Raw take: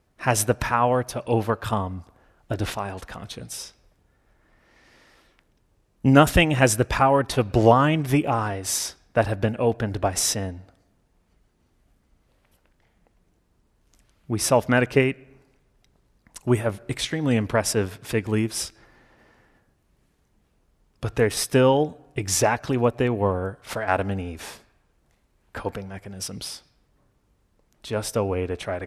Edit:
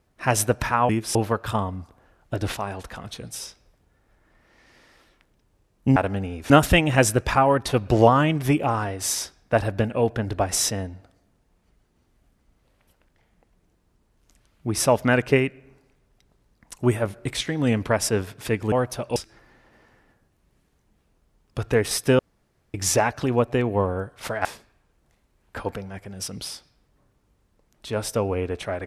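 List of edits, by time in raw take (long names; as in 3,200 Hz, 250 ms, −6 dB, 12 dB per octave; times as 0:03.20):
0:00.89–0:01.33: swap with 0:18.36–0:18.62
0:21.65–0:22.20: fill with room tone
0:23.91–0:24.45: move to 0:06.14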